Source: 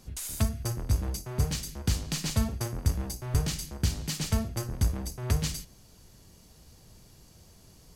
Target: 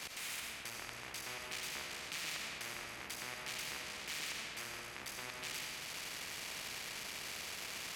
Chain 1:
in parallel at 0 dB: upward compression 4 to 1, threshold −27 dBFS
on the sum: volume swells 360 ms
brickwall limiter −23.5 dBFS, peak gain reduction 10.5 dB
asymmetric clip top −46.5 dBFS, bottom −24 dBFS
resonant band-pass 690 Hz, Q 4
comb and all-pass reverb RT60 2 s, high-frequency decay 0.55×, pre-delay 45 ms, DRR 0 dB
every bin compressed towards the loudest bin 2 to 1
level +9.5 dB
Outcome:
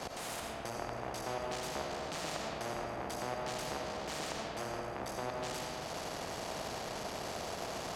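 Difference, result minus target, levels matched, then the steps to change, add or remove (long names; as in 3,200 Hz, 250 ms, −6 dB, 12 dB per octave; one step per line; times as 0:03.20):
500 Hz band +12.5 dB
change: resonant band-pass 2,300 Hz, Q 4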